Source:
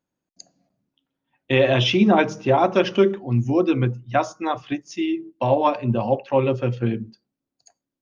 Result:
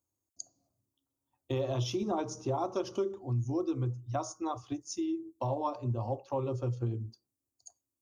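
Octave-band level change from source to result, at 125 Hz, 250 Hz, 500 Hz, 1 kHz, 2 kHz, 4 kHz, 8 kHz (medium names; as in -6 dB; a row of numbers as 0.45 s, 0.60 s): -9.5 dB, -14.0 dB, -14.5 dB, -14.0 dB, -26.0 dB, -18.0 dB, no reading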